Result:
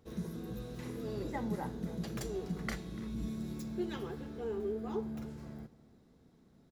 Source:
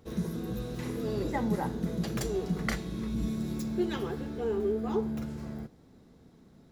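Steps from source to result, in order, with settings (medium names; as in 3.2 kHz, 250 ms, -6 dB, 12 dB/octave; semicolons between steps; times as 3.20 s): echo from a far wall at 50 m, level -19 dB; trim -7 dB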